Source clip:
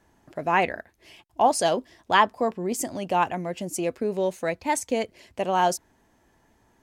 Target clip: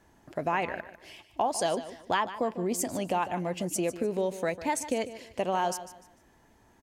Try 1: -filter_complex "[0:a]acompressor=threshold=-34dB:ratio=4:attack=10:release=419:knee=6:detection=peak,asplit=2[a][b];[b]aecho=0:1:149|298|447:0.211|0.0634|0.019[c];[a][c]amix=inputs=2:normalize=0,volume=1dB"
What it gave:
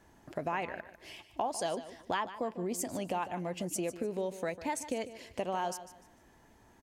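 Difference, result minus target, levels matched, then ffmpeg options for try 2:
compressor: peak gain reduction +6 dB
-filter_complex "[0:a]acompressor=threshold=-26dB:ratio=4:attack=10:release=419:knee=6:detection=peak,asplit=2[a][b];[b]aecho=0:1:149|298|447:0.211|0.0634|0.019[c];[a][c]amix=inputs=2:normalize=0,volume=1dB"

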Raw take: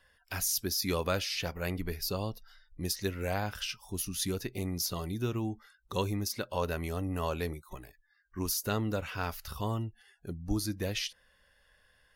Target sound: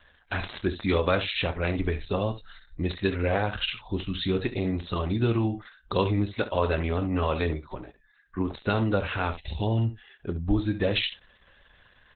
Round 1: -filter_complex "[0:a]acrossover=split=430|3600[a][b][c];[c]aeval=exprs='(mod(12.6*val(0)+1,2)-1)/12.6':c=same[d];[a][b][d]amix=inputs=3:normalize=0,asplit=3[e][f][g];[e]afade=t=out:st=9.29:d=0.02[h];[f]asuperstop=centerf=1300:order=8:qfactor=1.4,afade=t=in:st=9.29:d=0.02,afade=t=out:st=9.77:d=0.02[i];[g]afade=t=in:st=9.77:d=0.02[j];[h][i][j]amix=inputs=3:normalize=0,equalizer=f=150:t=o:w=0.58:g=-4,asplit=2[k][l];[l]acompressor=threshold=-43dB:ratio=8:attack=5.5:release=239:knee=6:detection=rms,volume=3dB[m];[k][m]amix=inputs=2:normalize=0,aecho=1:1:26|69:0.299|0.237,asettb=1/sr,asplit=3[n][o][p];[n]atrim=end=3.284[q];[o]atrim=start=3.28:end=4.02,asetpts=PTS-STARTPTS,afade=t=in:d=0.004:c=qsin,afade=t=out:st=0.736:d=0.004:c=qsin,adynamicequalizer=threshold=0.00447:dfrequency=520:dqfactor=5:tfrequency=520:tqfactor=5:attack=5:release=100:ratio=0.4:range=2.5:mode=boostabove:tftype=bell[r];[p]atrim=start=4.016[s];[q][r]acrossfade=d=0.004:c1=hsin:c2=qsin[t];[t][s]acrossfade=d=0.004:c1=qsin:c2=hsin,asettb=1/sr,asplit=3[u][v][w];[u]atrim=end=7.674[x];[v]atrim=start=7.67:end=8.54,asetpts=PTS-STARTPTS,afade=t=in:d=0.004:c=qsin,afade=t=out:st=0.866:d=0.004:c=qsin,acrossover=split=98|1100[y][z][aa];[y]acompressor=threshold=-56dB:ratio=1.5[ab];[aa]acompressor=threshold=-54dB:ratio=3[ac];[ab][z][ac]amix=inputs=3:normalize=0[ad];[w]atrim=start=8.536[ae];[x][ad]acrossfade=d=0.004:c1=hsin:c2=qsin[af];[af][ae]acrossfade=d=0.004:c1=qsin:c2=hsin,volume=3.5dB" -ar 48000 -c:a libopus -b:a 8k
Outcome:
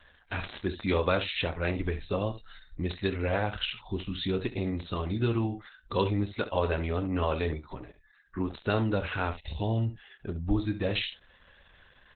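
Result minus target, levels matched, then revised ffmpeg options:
compressor: peak gain reduction +9.5 dB
-filter_complex "[0:a]acrossover=split=430|3600[a][b][c];[c]aeval=exprs='(mod(12.6*val(0)+1,2)-1)/12.6':c=same[d];[a][b][d]amix=inputs=3:normalize=0,asplit=3[e][f][g];[e]afade=t=out:st=9.29:d=0.02[h];[f]asuperstop=centerf=1300:order=8:qfactor=1.4,afade=t=in:st=9.29:d=0.02,afade=t=out:st=9.77:d=0.02[i];[g]afade=t=in:st=9.77:d=0.02[j];[h][i][j]amix=inputs=3:normalize=0,equalizer=f=150:t=o:w=0.58:g=-4,asplit=2[k][l];[l]acompressor=threshold=-32dB:ratio=8:attack=5.5:release=239:knee=6:detection=rms,volume=3dB[m];[k][m]amix=inputs=2:normalize=0,aecho=1:1:26|69:0.299|0.237,asettb=1/sr,asplit=3[n][o][p];[n]atrim=end=3.284[q];[o]atrim=start=3.28:end=4.02,asetpts=PTS-STARTPTS,afade=t=in:d=0.004:c=qsin,afade=t=out:st=0.736:d=0.004:c=qsin,adynamicequalizer=threshold=0.00447:dfrequency=520:dqfactor=5:tfrequency=520:tqfactor=5:attack=5:release=100:ratio=0.4:range=2.5:mode=boostabove:tftype=bell[r];[p]atrim=start=4.016[s];[q][r]acrossfade=d=0.004:c1=hsin:c2=qsin[t];[t][s]acrossfade=d=0.004:c1=qsin:c2=hsin,asettb=1/sr,asplit=3[u][v][w];[u]atrim=end=7.674[x];[v]atrim=start=7.67:end=8.54,asetpts=PTS-STARTPTS,afade=t=in:d=0.004:c=qsin,afade=t=out:st=0.866:d=0.004:c=qsin,acrossover=split=98|1100[y][z][aa];[y]acompressor=threshold=-56dB:ratio=1.5[ab];[aa]acompressor=threshold=-54dB:ratio=3[ac];[ab][z][ac]amix=inputs=3:normalize=0[ad];[w]atrim=start=8.536[ae];[x][ad]acrossfade=d=0.004:c1=hsin:c2=qsin[af];[af][ae]acrossfade=d=0.004:c1=qsin:c2=hsin,volume=3.5dB" -ar 48000 -c:a libopus -b:a 8k

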